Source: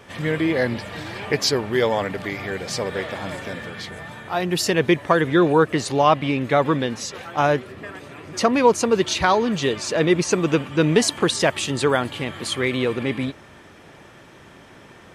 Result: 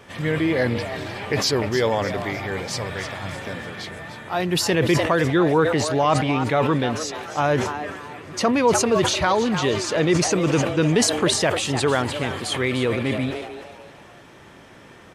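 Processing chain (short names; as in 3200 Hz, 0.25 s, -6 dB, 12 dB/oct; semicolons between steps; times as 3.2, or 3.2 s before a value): 2.77–3.36 graphic EQ 125/250/500 Hz +3/-6/-6 dB; frequency-shifting echo 0.301 s, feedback 37%, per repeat +150 Hz, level -12 dB; in parallel at +2.5 dB: limiter -11 dBFS, peak gain reduction 7.5 dB; on the sum: dynamic EQ 100 Hz, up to +5 dB, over -34 dBFS, Q 2; sustainer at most 54 dB/s; gain -8 dB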